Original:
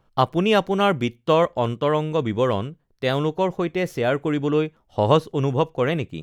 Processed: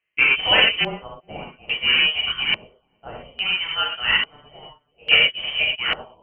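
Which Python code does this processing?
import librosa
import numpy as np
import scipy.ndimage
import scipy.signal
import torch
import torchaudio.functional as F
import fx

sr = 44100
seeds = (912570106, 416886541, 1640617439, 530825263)

y = np.minimum(x, 2.0 * 10.0 ** (-9.0 / 20.0) - x)
y = scipy.signal.sosfilt(scipy.signal.butter(4, 290.0, 'highpass', fs=sr, output='sos'), y)
y = fx.freq_invert(y, sr, carrier_hz=3400)
y = y + 10.0 ** (-19.0 / 20.0) * np.pad(y, (int(424 * sr / 1000.0), 0))[:len(y)]
y = fx.rev_gated(y, sr, seeds[0], gate_ms=140, shape='flat', drr_db=-5.5)
y = fx.filter_lfo_lowpass(y, sr, shape='square', hz=0.59, low_hz=710.0, high_hz=2000.0, q=1.6)
y = fx.upward_expand(y, sr, threshold_db=-40.0, expansion=1.5)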